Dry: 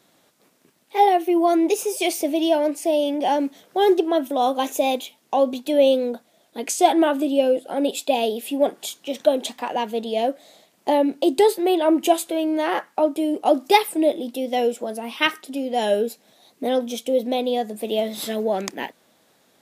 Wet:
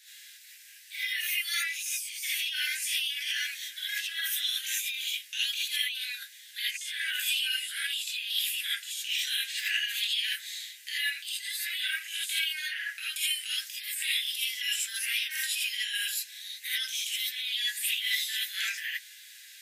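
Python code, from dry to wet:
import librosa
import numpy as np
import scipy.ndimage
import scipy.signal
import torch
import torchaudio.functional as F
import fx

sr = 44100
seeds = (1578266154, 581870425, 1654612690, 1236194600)

y = scipy.signal.sosfilt(scipy.signal.butter(16, 1600.0, 'highpass', fs=sr, output='sos'), x)
y = fx.over_compress(y, sr, threshold_db=-41.0, ratio=-1.0)
y = fx.rev_gated(y, sr, seeds[0], gate_ms=100, shape='rising', drr_db=-8.0)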